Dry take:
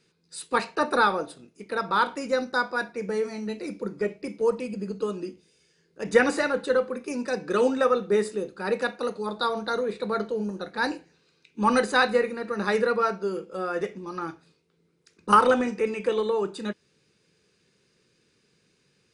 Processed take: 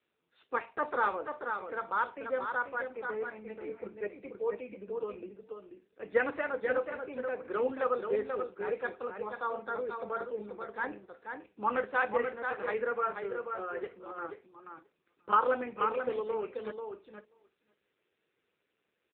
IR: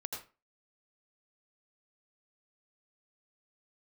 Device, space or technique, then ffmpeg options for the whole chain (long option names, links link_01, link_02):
satellite phone: -filter_complex "[0:a]asplit=3[link_01][link_02][link_03];[link_01]afade=type=out:start_time=12.42:duration=0.02[link_04];[link_02]highpass=frequency=210:poles=1,afade=type=in:start_time=12.42:duration=0.02,afade=type=out:start_time=14.27:duration=0.02[link_05];[link_03]afade=type=in:start_time=14.27:duration=0.02[link_06];[link_04][link_05][link_06]amix=inputs=3:normalize=0,highpass=370,lowpass=3000,aecho=1:1:485:0.501,aecho=1:1:535:0.0631,volume=-6.5dB" -ar 8000 -c:a libopencore_amrnb -b:a 6700